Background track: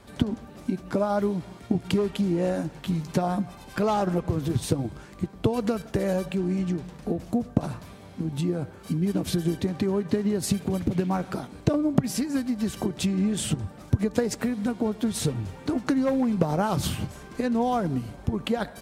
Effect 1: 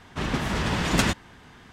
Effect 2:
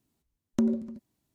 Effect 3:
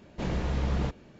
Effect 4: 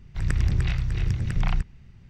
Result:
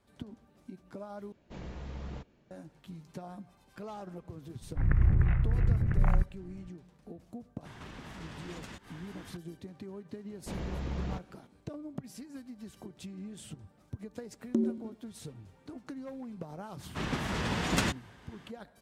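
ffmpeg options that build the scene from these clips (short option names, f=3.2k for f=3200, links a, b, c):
-filter_complex "[3:a]asplit=2[a][b];[1:a]asplit=2[c][d];[0:a]volume=-19dB[e];[4:a]lowpass=f=1.8k:w=0.5412,lowpass=f=1.8k:w=1.3066[f];[c]acompressor=threshold=-43dB:ratio=6:attack=3.2:release=140:knee=1:detection=peak[g];[2:a]equalizer=f=320:w=1.5:g=14[h];[d]highpass=51[i];[e]asplit=2[j][k];[j]atrim=end=1.324[l];[a]atrim=end=1.19,asetpts=PTS-STARTPTS,volume=-13dB[m];[k]atrim=start=2.506[n];[f]atrim=end=2.09,asetpts=PTS-STARTPTS,volume=-1.5dB,afade=t=in:d=0.004:c=hsin,afade=t=out:st=2.086:d=0.004:c=hsin,adelay=203301S[o];[g]atrim=end=1.72,asetpts=PTS-STARTPTS,volume=-1.5dB,afade=t=in:d=0.004:c=hsin,afade=t=out:st=1.716:d=0.004:c=hsin,adelay=7650[p];[b]atrim=end=1.19,asetpts=PTS-STARTPTS,volume=-7.5dB,afade=t=in:d=0.004:c=hsin,afade=t=out:st=1.186:d=0.004:c=hsin,adelay=10280[q];[h]atrim=end=1.34,asetpts=PTS-STARTPTS,volume=-11dB,afade=t=in:d=0.004:c=hsin,afade=t=out:st=1.336:d=0.004:c=hsin,adelay=615636S[r];[i]atrim=end=1.72,asetpts=PTS-STARTPTS,volume=-6.5dB,afade=t=in:d=0.004:c=hsin,afade=t=out:st=1.716:d=0.004:c=hsin,adelay=16790[s];[l][m]acrossfade=d=0.004:c1=hsin:c2=hsin[t];[t][n]acrossfade=d=0.004:c1=hsin:c2=hsin[u];[u][o][p][q][r][s]amix=inputs=6:normalize=0"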